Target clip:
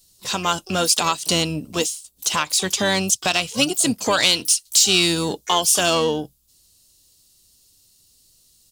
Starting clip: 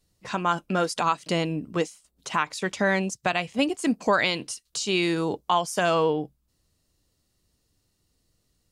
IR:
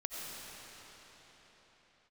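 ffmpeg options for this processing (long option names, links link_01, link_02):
-filter_complex "[0:a]acontrast=37,asplit=3[link_01][link_02][link_03];[link_02]asetrate=22050,aresample=44100,atempo=2,volume=-14dB[link_04];[link_03]asetrate=88200,aresample=44100,atempo=0.5,volume=-17dB[link_05];[link_01][link_04][link_05]amix=inputs=3:normalize=0,aexciter=amount=3.3:drive=8.7:freq=2900,volume=-3.5dB"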